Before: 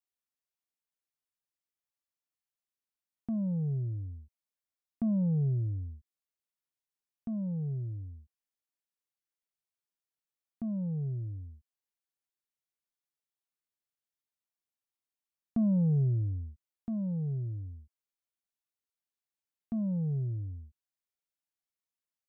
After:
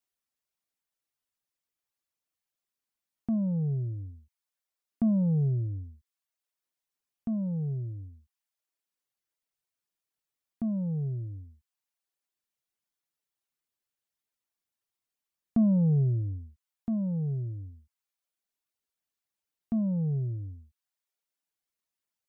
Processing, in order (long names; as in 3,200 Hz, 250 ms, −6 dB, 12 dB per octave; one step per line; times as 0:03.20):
reverb reduction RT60 0.67 s
level +5 dB